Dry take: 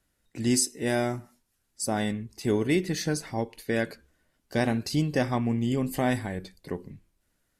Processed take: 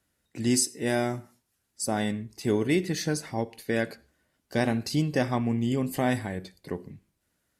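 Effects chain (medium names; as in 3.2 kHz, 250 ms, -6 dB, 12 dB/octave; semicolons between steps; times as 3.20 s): high-pass 62 Hz; on a send: reverberation RT60 0.35 s, pre-delay 35 ms, DRR 23 dB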